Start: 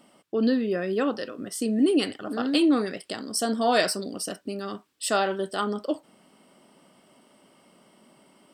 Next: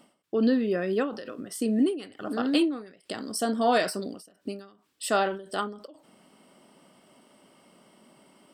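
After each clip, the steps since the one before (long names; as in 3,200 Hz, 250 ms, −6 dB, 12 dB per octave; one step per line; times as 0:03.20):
dynamic equaliser 5,800 Hz, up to −5 dB, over −43 dBFS, Q 0.74
every ending faded ahead of time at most 110 dB per second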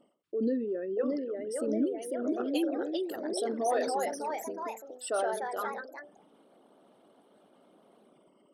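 spectral envelope exaggerated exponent 2
delay with pitch and tempo change per echo 675 ms, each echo +2 semitones, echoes 3
level −6.5 dB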